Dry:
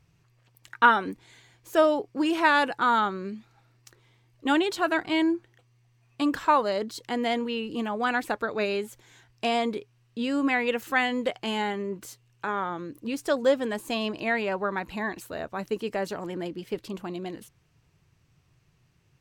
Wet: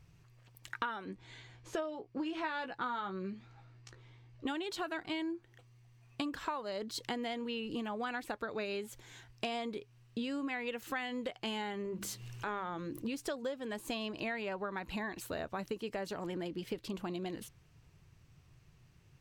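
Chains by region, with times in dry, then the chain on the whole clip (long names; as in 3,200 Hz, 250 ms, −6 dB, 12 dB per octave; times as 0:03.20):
0:01.05–0:04.47: high-frequency loss of the air 87 metres + double-tracking delay 16 ms −6 dB
0:11.85–0:13.02: mains-hum notches 50/100/150/200/250/300/350 Hz + transient designer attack −7 dB, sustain +2 dB + upward compression, threshold −36 dBFS
whole clip: low-shelf EQ 78 Hz +7.5 dB; downward compressor 12 to 1, threshold −35 dBFS; dynamic equaliser 3,600 Hz, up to +3 dB, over −58 dBFS, Q 0.98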